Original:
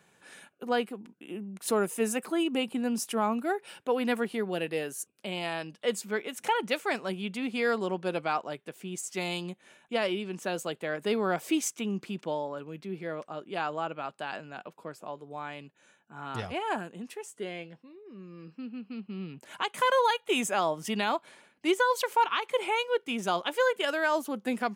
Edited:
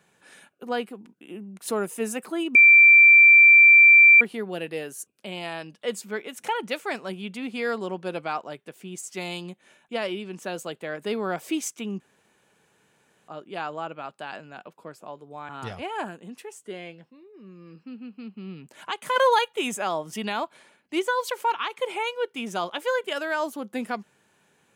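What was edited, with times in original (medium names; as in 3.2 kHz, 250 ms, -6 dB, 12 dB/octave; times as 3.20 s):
2.55–4.21 s: bleep 2.35 kHz -9 dBFS
12.00–13.28 s: room tone
15.49–16.21 s: delete
19.88–20.25 s: gain +5 dB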